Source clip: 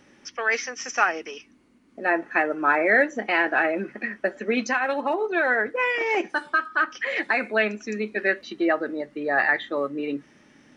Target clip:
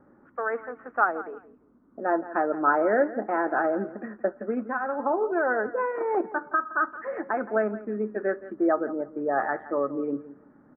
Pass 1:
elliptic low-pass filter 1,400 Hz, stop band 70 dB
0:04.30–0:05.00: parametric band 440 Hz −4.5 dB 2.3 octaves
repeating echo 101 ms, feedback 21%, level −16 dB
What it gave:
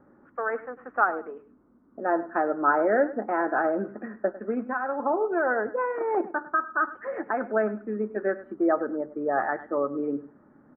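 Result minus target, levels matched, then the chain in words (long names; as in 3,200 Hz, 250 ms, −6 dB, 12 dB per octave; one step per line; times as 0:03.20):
echo 69 ms early
elliptic low-pass filter 1,400 Hz, stop band 70 dB
0:04.30–0:05.00: parametric band 440 Hz −4.5 dB 2.3 octaves
repeating echo 170 ms, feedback 21%, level −16 dB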